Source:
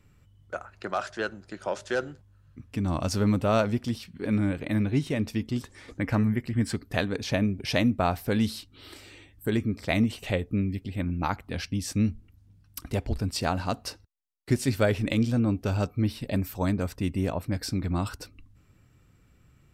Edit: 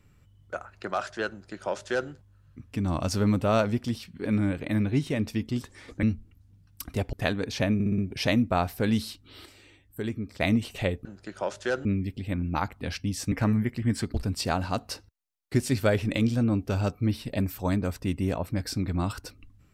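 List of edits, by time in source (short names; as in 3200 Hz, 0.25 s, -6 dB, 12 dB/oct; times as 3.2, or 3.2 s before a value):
1.3–2.1 copy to 10.53
6.03–6.85 swap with 12–13.1
7.46 stutter 0.06 s, 5 plays
8.93–9.88 gain -5.5 dB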